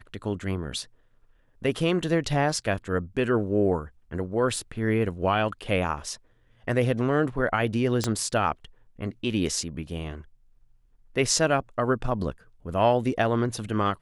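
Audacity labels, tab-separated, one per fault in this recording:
4.560000	4.560000	dropout 2.6 ms
8.040000	8.040000	pop -11 dBFS

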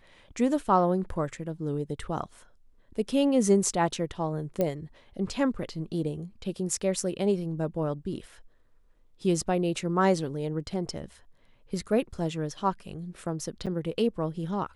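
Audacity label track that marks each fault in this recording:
4.610000	4.610000	pop -15 dBFS
13.660000	13.670000	dropout 6.9 ms

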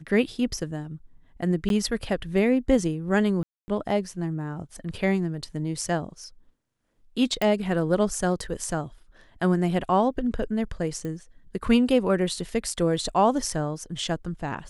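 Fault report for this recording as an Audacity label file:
1.690000	1.700000	dropout 12 ms
3.430000	3.680000	dropout 250 ms
7.420000	7.420000	pop -12 dBFS
11.050000	11.050000	pop -23 dBFS

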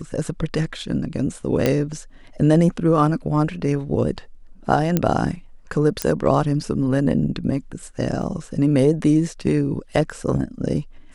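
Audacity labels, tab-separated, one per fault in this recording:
1.660000	1.660000	pop -5 dBFS
4.970000	4.970000	pop -5 dBFS
6.020000	6.020000	pop -5 dBFS
8.220000	8.230000	dropout 5.9 ms

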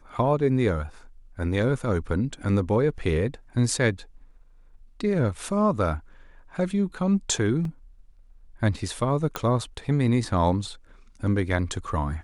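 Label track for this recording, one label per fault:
7.650000	7.650000	dropout 2.5 ms
9.360000	9.360000	pop -12 dBFS

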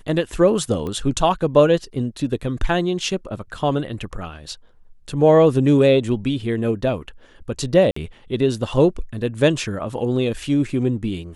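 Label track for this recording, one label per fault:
0.870000	0.870000	pop -18 dBFS
7.910000	7.960000	dropout 54 ms

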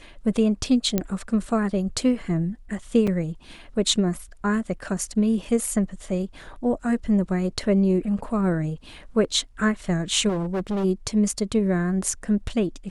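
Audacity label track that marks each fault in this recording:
0.980000	0.980000	pop -8 dBFS
3.070000	3.070000	dropout 4.9 ms
10.280000	10.850000	clipped -22.5 dBFS

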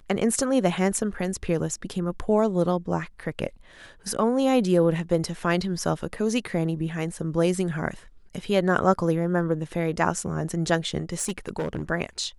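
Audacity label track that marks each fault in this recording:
11.020000	11.830000	clipped -22.5 dBFS

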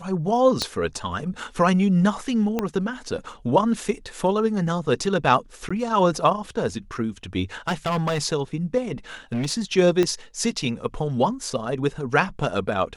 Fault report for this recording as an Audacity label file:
0.620000	0.620000	pop -9 dBFS
2.590000	2.590000	pop -10 dBFS
5.690000	5.710000	dropout 15 ms
7.680000	8.250000	clipped -19.5 dBFS
9.320000	9.530000	clipped -21 dBFS
10.030000	10.030000	pop -9 dBFS

